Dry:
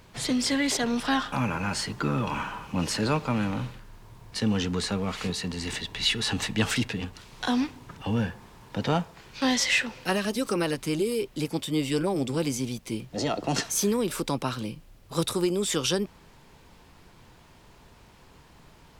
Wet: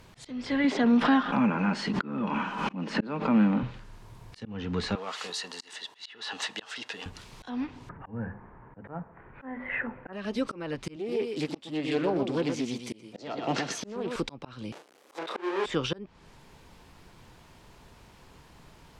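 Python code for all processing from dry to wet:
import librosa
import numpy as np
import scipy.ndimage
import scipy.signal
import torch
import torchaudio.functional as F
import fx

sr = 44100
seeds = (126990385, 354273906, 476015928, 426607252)

y = fx.chain(x, sr, fx.low_shelf_res(hz=140.0, db=-13.0, q=3.0),
    fx.pre_swell(db_per_s=69.0), at=(0.64, 3.63))
y = fx.chain(y, sr, fx.highpass(hz=610.0, slope=12),
    fx.peak_eq(hz=2300.0, db=-8.0, octaves=0.2), at=(4.95, 7.06))
y = fx.chain(y, sr, fx.steep_lowpass(hz=1900.0, slope=36),
    fx.hum_notches(base_hz=50, count=5), at=(7.89, 10.13))
y = fx.chain(y, sr, fx.bessel_highpass(hz=210.0, order=2),
    fx.echo_single(ms=121, db=-6.5),
    fx.doppler_dist(depth_ms=0.22), at=(10.96, 14.16))
y = fx.chain(y, sr, fx.halfwave_hold(),
    fx.highpass(hz=350.0, slope=24),
    fx.doubler(ms=31.0, db=-4), at=(14.72, 15.66))
y = fx.env_lowpass_down(y, sr, base_hz=2400.0, full_db=-22.5)
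y = fx.auto_swell(y, sr, attack_ms=350.0)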